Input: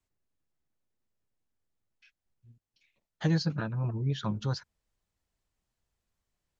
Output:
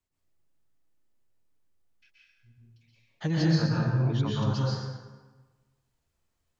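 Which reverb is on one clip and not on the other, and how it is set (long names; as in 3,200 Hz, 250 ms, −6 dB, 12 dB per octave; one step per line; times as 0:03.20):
dense smooth reverb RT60 1.3 s, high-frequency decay 0.7×, pre-delay 110 ms, DRR −6 dB
level −2.5 dB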